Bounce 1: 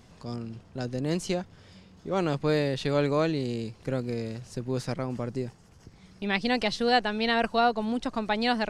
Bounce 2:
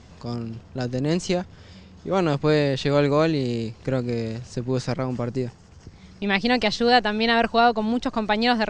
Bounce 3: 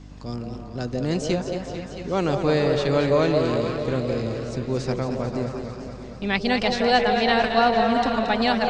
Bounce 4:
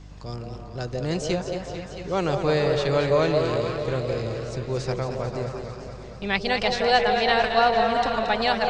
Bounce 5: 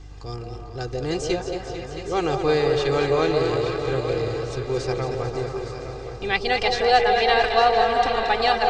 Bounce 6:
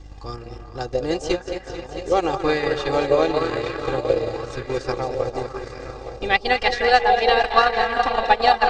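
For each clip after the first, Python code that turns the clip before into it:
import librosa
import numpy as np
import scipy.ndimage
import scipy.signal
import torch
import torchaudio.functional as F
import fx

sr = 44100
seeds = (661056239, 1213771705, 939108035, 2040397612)

y1 = scipy.signal.sosfilt(scipy.signal.butter(6, 7900.0, 'lowpass', fs=sr, output='sos'), x)
y1 = fx.peak_eq(y1, sr, hz=76.0, db=8.5, octaves=0.29)
y1 = y1 * 10.0 ** (5.5 / 20.0)
y2 = fx.dmg_buzz(y1, sr, base_hz=50.0, harmonics=6, level_db=-41.0, tilt_db=-4, odd_only=False)
y2 = fx.echo_stepped(y2, sr, ms=169, hz=540.0, octaves=0.7, feedback_pct=70, wet_db=-2)
y2 = fx.echo_warbled(y2, sr, ms=223, feedback_pct=70, rate_hz=2.8, cents=92, wet_db=-8.5)
y2 = y2 * 10.0 ** (-2.0 / 20.0)
y3 = fx.peak_eq(y2, sr, hz=250.0, db=-10.5, octaves=0.52)
y4 = y3 + 0.64 * np.pad(y3, (int(2.5 * sr / 1000.0), 0))[:len(y3)]
y4 = fx.echo_feedback(y4, sr, ms=864, feedback_pct=47, wet_db=-11)
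y5 = y4 + 0.39 * np.pad(y4, (int(3.6 * sr / 1000.0), 0))[:len(y4)]
y5 = fx.transient(y5, sr, attack_db=6, sustain_db=-9)
y5 = fx.bell_lfo(y5, sr, hz=0.96, low_hz=540.0, high_hz=2000.0, db=7)
y5 = y5 * 10.0 ** (-1.5 / 20.0)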